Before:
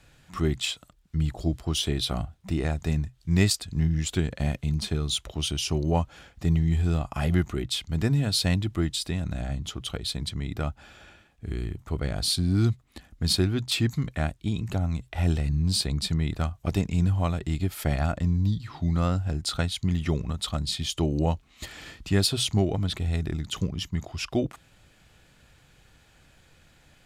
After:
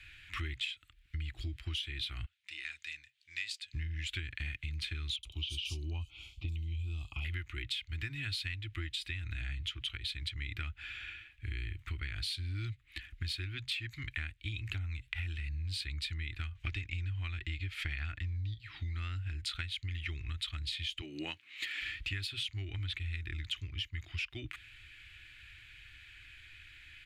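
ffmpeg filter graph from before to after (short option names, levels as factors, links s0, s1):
-filter_complex "[0:a]asettb=1/sr,asplit=3[s0][s1][s2];[s0]atrim=end=2.264[s3];[s1]atrim=start=2.26:end=3.74,asetpts=PTS-STARTPTS,afade=t=in:d=0.004:c=qsin,afade=t=out:st=1.476:d=0.004:c=qsin,lowpass=6100,aderivative[s4];[s2]atrim=start=3.736[s5];[s3][s4]acrossfade=d=0.004:c1=hsin:c2=qsin[s6];[s6][s5]acrossfade=d=0.004:c1=qsin:c2=hsin,asettb=1/sr,asplit=3[s7][s8][s9];[s7]atrim=end=5.164[s10];[s8]atrim=start=5.16:end=7.25,asetpts=PTS-STARTPTS,afade=t=in:d=0.004:c=qsin,afade=t=out:st=2.086:d=0.004:c=qsin,asuperstop=centerf=1700:order=4:qfactor=1,acrossover=split=4100[s11][s12];[s12]adelay=70[s13];[s11][s13]amix=inputs=2:normalize=0,atrim=end_sample=92169[s14];[s9]atrim=start=7.246[s15];[s10][s14]acrossfade=d=0.004:c1=hsin:c2=qsin[s16];[s16][s15]acrossfade=d=0.004:c1=qsin:c2=hsin,asettb=1/sr,asplit=3[s17][s18][s19];[s17]atrim=end=16.554[s20];[s18]atrim=start=16.55:end=18.54,asetpts=PTS-STARTPTS,afade=t=in:d=0.004:c=qsin,afade=t=out:st=1.986:d=0.004:c=qsin,lowpass=7200,acontrast=85[s21];[s19]atrim=start=18.536[s22];[s20][s21]acrossfade=d=0.004:c1=hsin:c2=qsin[s23];[s23][s22]acrossfade=d=0.004:c1=qsin:c2=hsin,asettb=1/sr,asplit=3[s24][s25][s26];[s24]atrim=end=21.014[s27];[s25]atrim=start=21.01:end=21.82,asetpts=PTS-STARTPTS,afade=t=in:d=0.004:c=qsin,afade=t=out:st=0.806:d=0.004:c=qsin,highpass=f=180:w=0.5412,highpass=f=180:w=1.3066,equalizer=f=540:t=o:w=0.69:g=6[s28];[s26]atrim=start=21.816[s29];[s27][s28]acrossfade=d=0.004:c1=hsin:c2=qsin[s30];[s30][s29]acrossfade=d=0.004:c1=qsin:c2=hsin,firequalizer=gain_entry='entry(100,0);entry(180,-26);entry(320,-8);entry(490,-28);entry(1600,5);entry(2300,13);entry(5500,-7)':delay=0.05:min_phase=1,acompressor=threshold=0.0178:ratio=12"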